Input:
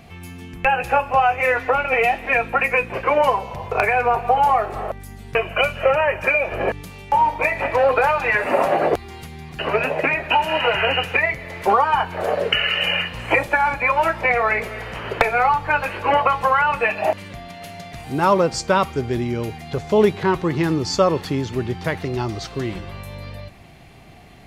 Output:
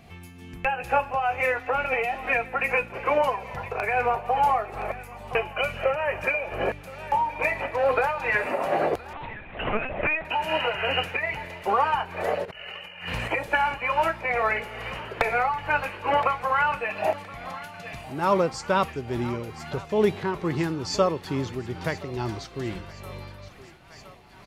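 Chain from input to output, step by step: on a send: thinning echo 1.019 s, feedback 71%, high-pass 550 Hz, level -15.5 dB; 12.45–13.28 on the sum: negative-ratio compressor -31 dBFS, ratio -1; tremolo triangle 2.3 Hz, depth 55%; 9.13–10.25 LPC vocoder at 8 kHz pitch kept; speakerphone echo 0.38 s, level -24 dB; gain -4 dB

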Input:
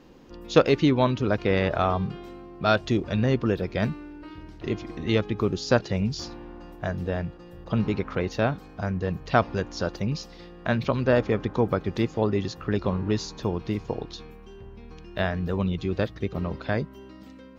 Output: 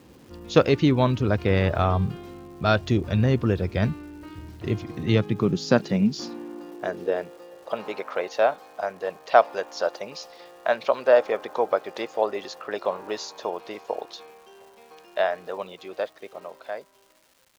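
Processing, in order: ending faded out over 2.58 s; high-pass sweep 78 Hz -> 620 Hz, 4.41–7.77; crackle 590/s -47 dBFS

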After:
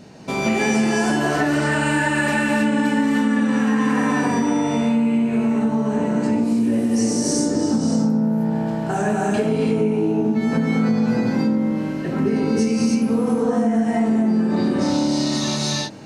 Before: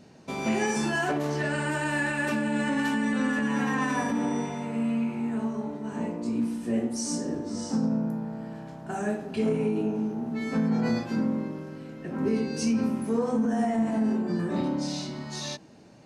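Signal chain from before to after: non-linear reverb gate 0.34 s rising, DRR -3.5 dB; compressor, threshold -25 dBFS, peak gain reduction 11 dB; gain +9 dB

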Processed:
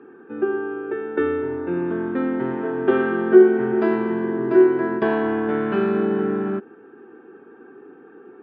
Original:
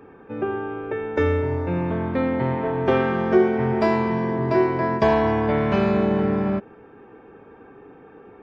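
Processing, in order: speaker cabinet 230–3100 Hz, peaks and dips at 240 Hz +5 dB, 360 Hz +10 dB, 590 Hz -10 dB, 970 Hz -5 dB, 1500 Hz +7 dB, 2200 Hz -9 dB; gain -1.5 dB

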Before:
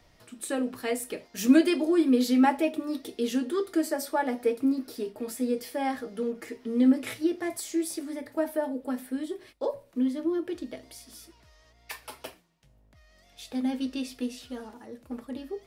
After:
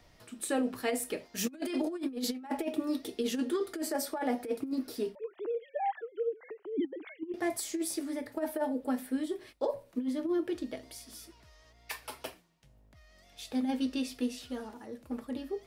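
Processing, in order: 5.15–7.34 sine-wave speech; dynamic EQ 750 Hz, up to +5 dB, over -45 dBFS, Q 5; negative-ratio compressor -27 dBFS, ratio -0.5; gain -3.5 dB

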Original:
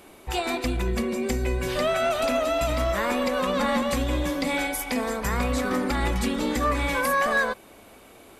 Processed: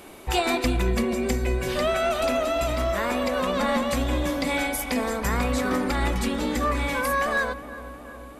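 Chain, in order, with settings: vocal rider 2 s; darkening echo 0.364 s, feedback 76%, low-pass 1900 Hz, level -15 dB

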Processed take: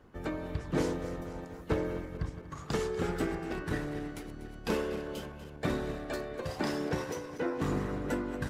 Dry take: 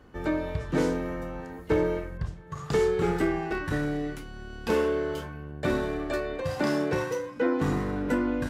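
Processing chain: regenerating reverse delay 0.121 s, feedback 76%, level -12 dB; harmonic-percussive split harmonic -11 dB

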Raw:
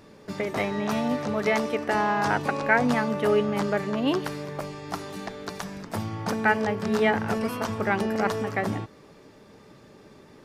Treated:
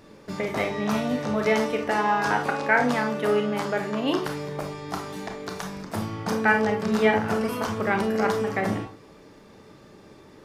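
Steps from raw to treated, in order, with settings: 1.91–4.26 low shelf 140 Hz -11 dB; reverb RT60 0.30 s, pre-delay 22 ms, DRR 4 dB

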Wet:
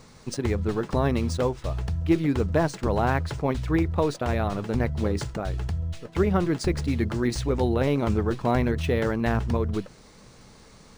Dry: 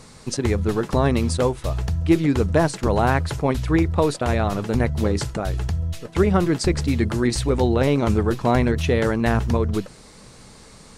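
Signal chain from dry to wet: decimation joined by straight lines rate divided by 3×; gain -4.5 dB

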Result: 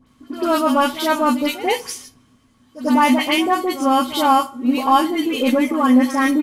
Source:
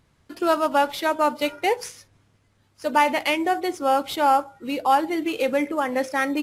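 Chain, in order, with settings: high shelf 4000 Hz +6 dB; small resonant body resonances 250/1100/3100 Hz, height 17 dB, ringing for 95 ms; dispersion highs, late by 68 ms, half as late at 1800 Hz; in parallel at -10.5 dB: soft clip -22.5 dBFS, distortion -7 dB; on the sum: doubler 16 ms -11.5 dB; reverse echo 94 ms -14.5 dB; on a send at -19.5 dB: reverb RT60 0.65 s, pre-delay 15 ms

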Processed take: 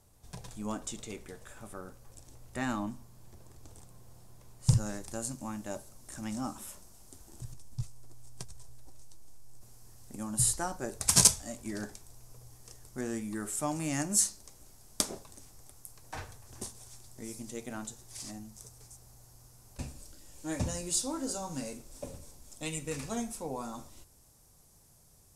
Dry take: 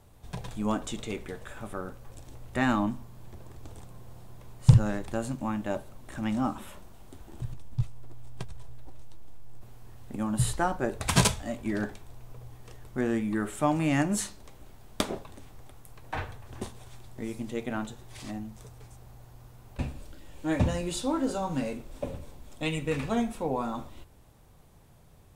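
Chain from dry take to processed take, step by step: band shelf 7700 Hz +9.5 dB, from 4.68 s +16 dB; gain -8 dB

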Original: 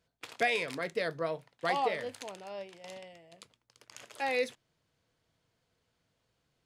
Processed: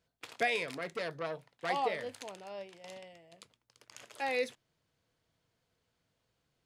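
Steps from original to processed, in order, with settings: 0.71–1.7 core saturation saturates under 2000 Hz; gain -2 dB

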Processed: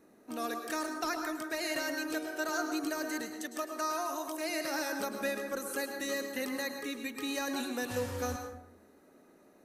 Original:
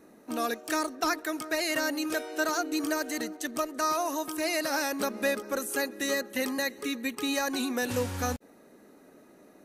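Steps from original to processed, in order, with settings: 3.3–4.5 HPF 290 Hz 12 dB/oct; plate-style reverb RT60 0.81 s, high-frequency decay 0.5×, pre-delay 95 ms, DRR 4.5 dB; gain -6.5 dB

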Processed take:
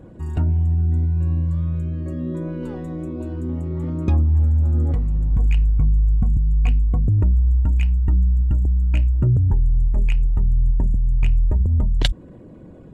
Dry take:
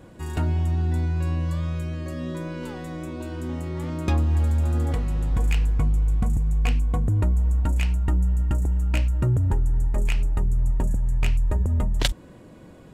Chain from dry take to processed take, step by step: formant sharpening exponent 1.5; gain +4.5 dB

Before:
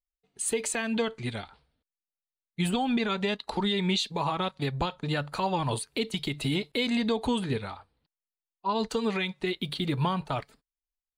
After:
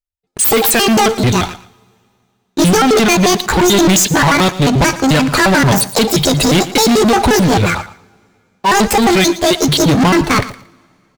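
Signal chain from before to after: trilling pitch shifter +10 st, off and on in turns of 88 ms; low shelf 240 Hz +5.5 dB; sample leveller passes 5; on a send: feedback echo 0.115 s, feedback 20%, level -16 dB; on the sum: two-slope reverb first 0.47 s, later 2.5 s, from -17 dB, DRR 18.5 dB; gain +7.5 dB

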